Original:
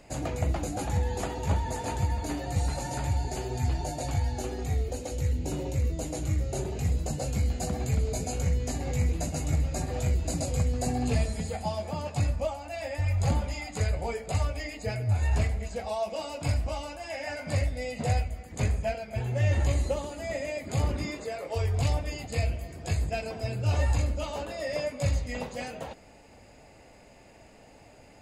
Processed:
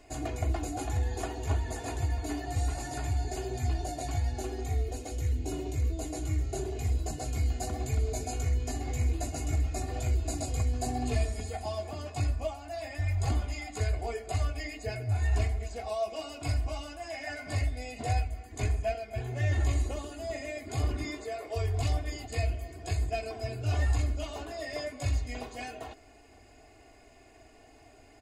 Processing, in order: comb 2.8 ms, depth 85%; gain -5 dB

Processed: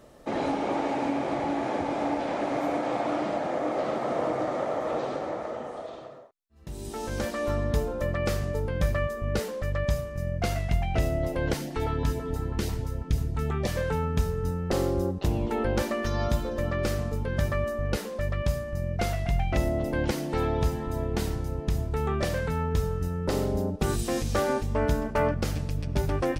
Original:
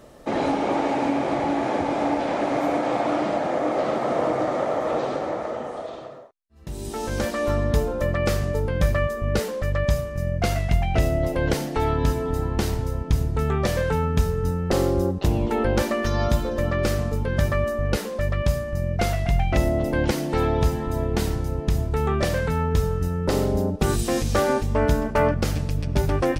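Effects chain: 11.54–13.76 LFO notch saw up 6.1 Hz 370–1600 Hz; gain -5 dB

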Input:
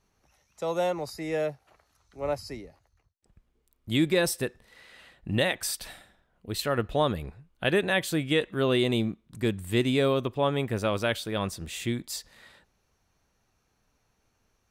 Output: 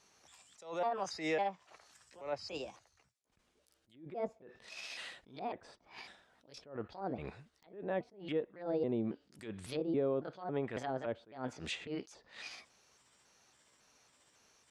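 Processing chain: trilling pitch shifter +4.5 st, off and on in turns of 0.276 s; weighting filter ITU-R 468; treble ducked by the level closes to 590 Hz, closed at -22.5 dBFS; tilt shelf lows +7 dB, about 940 Hz; compressor 3:1, threshold -38 dBFS, peak gain reduction 11.5 dB; wrapped overs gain 21 dB; attack slew limiter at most 140 dB/s; gain +5 dB

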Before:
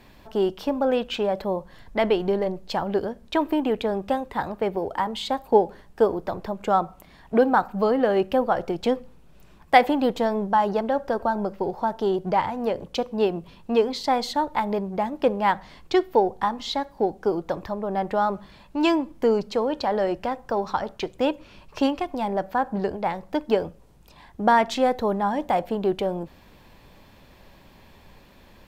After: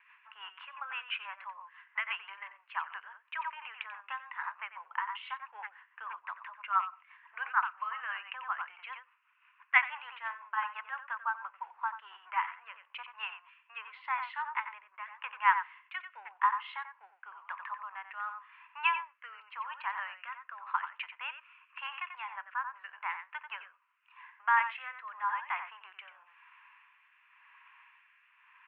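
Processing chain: speakerphone echo 90 ms, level -8 dB; rotary speaker horn 6 Hz, later 0.9 Hz, at 11.43; Chebyshev band-pass 1000–2800 Hz, order 4; gain +1.5 dB

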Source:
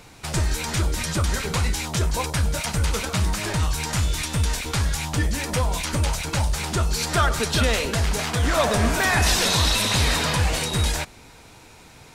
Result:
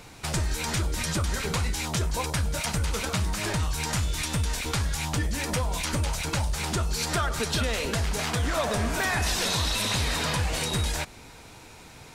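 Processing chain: compressor 3:1, threshold -25 dBFS, peak gain reduction 8 dB

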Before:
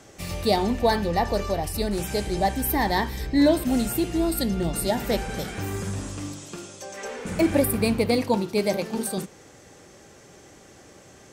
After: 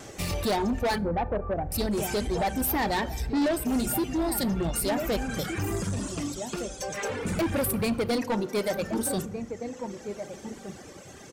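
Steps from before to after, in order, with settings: reverb removal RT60 1.6 s; in parallel at +1 dB: compressor, threshold -33 dBFS, peak gain reduction 16 dB; 0.98–1.72 on the sum: Gaussian blur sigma 7.5 samples; outdoor echo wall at 260 m, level -12 dB; soft clip -22.5 dBFS, distortion -8 dB; wow and flutter 24 cents; on a send at -18 dB: reverb RT60 1.5 s, pre-delay 30 ms

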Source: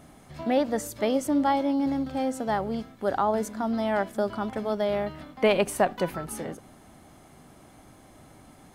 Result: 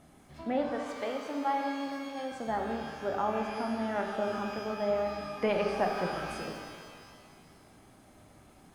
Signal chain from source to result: 0.69–2.32 weighting filter A; treble ducked by the level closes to 2700 Hz, closed at -25 dBFS; shimmer reverb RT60 2 s, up +12 st, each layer -8 dB, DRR 2 dB; gain -7.5 dB

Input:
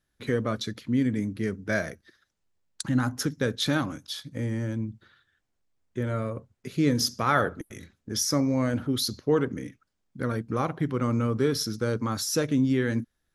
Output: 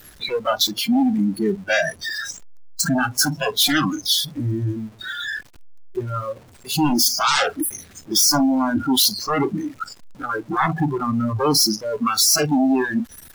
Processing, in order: zero-crossing step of -28 dBFS; harmonic-percussive split percussive +5 dB; wavefolder -19.5 dBFS; spectral noise reduction 24 dB; gain +8 dB

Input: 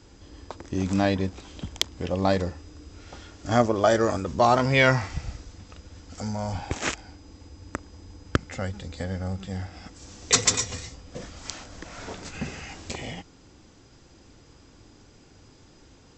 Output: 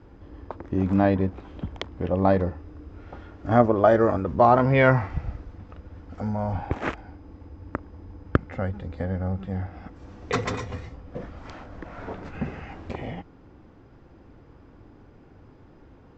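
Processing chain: LPF 1500 Hz 12 dB/oct; gain +3 dB

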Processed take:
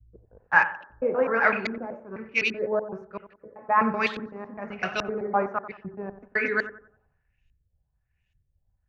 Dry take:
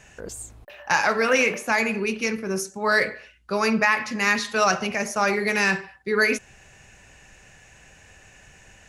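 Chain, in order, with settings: slices in reverse order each 0.127 s, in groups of 4; LFO low-pass saw up 1.2 Hz 290–3600 Hz; analogue delay 91 ms, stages 1024, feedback 53%, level -11 dB; three-band expander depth 100%; gain -7 dB

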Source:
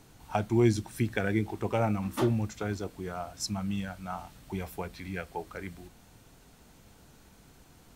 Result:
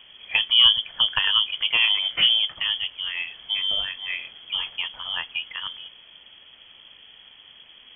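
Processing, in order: inverted band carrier 3300 Hz; gain +7 dB

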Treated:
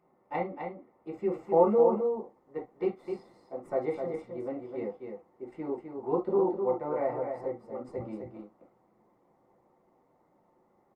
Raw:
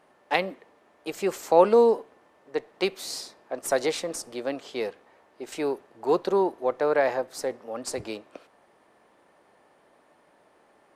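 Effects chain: polynomial smoothing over 65 samples; low shelf 110 Hz +6 dB; echo 0.257 s -6 dB; reverb, pre-delay 3 ms, DRR 0 dB; gain -8.5 dB; Opus 48 kbps 48000 Hz

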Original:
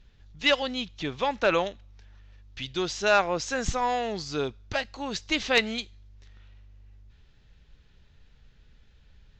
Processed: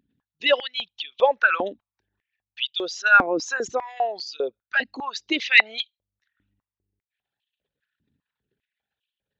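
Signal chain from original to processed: formant sharpening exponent 2; stepped high-pass 5 Hz 270–3000 Hz; gain +1 dB

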